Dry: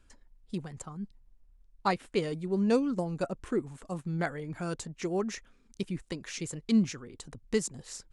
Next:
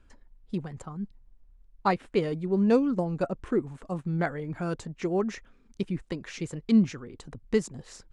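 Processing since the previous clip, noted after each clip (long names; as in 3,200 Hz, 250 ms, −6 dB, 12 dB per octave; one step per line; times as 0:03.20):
low-pass filter 2,200 Hz 6 dB per octave
level +4 dB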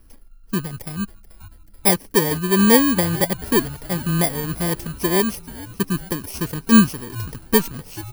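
samples in bit-reversed order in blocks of 32 samples
echo with shifted repeats 434 ms, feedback 64%, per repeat −110 Hz, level −18 dB
level +8.5 dB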